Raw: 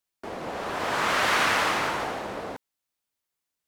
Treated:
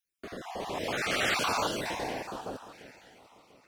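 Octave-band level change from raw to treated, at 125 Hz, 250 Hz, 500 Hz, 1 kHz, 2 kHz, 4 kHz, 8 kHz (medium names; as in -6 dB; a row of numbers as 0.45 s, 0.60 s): -2.5 dB, -2.5 dB, -3.5 dB, -7.0 dB, -7.0 dB, -4.0 dB, -3.0 dB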